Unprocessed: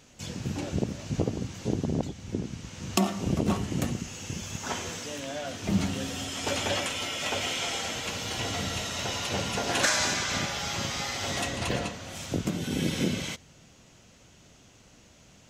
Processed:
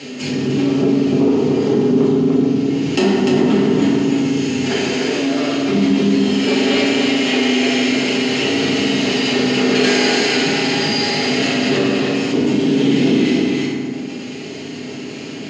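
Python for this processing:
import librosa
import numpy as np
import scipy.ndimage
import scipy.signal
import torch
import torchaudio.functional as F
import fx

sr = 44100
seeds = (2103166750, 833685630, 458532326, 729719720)

y = fx.lower_of_two(x, sr, delay_ms=0.44)
y = fx.cabinet(y, sr, low_hz=160.0, low_slope=24, high_hz=5900.0, hz=(240.0, 390.0, 3100.0), db=(5, 10, 7))
y = y + 10.0 ** (-4.5 / 20.0) * np.pad(y, (int(297 * sr / 1000.0), 0))[:len(y)]
y = fx.rev_fdn(y, sr, rt60_s=1.4, lf_ratio=1.1, hf_ratio=0.5, size_ms=22.0, drr_db=-8.0)
y = fx.env_flatten(y, sr, amount_pct=50)
y = y * librosa.db_to_amplitude(-1.0)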